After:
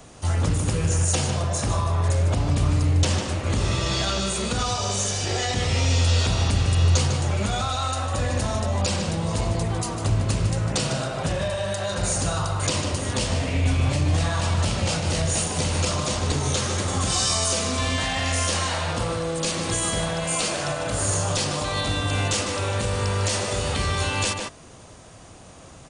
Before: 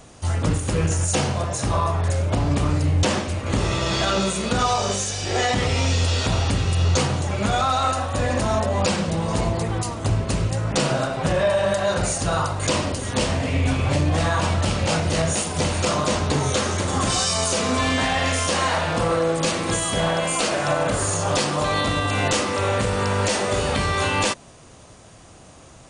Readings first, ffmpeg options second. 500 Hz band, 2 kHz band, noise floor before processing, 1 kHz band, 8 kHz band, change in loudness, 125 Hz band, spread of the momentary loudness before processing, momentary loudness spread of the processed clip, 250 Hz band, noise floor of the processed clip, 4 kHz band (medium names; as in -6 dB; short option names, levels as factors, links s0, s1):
-5.0 dB, -4.0 dB, -46 dBFS, -5.0 dB, +0.5 dB, -2.0 dB, 0.0 dB, 3 LU, 5 LU, -4.0 dB, -45 dBFS, -1.0 dB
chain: -filter_complex "[0:a]asplit=2[s0][s1];[s1]adelay=151.6,volume=0.447,highshelf=f=4000:g=-3.41[s2];[s0][s2]amix=inputs=2:normalize=0,acrossover=split=130|3000[s3][s4][s5];[s4]acompressor=threshold=0.0501:ratio=6[s6];[s3][s6][s5]amix=inputs=3:normalize=0"